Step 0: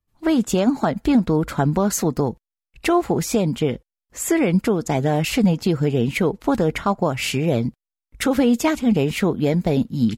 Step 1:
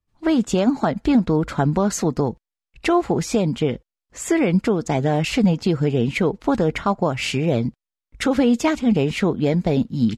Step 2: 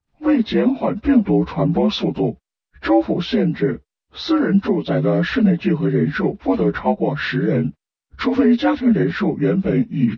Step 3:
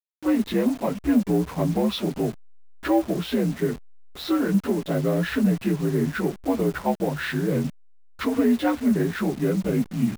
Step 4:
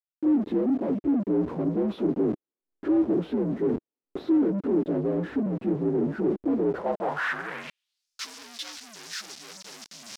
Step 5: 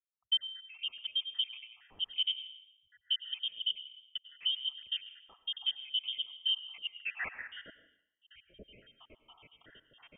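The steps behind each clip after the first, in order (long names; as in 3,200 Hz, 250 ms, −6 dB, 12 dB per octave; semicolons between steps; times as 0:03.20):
low-pass filter 7,200 Hz 12 dB per octave
partials spread apart or drawn together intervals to 81%; level +3.5 dB
hold until the input has moved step −29.5 dBFS; level −5.5 dB
reversed playback; downward compressor, threshold −30 dBFS, peak gain reduction 14.5 dB; reversed playback; leveller curve on the samples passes 5; band-pass filter sweep 330 Hz → 5,400 Hz, 0:06.61–0:08.10; level +4 dB
time-frequency cells dropped at random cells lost 80%; dense smooth reverb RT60 0.82 s, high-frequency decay 0.75×, pre-delay 85 ms, DRR 11 dB; voice inversion scrambler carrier 3,400 Hz; level −5.5 dB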